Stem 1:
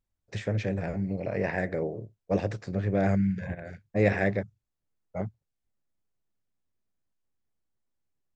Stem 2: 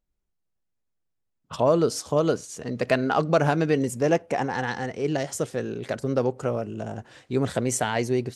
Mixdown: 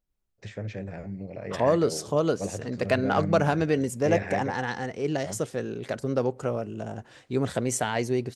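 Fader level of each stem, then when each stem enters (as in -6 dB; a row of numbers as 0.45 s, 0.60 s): -6.0 dB, -2.0 dB; 0.10 s, 0.00 s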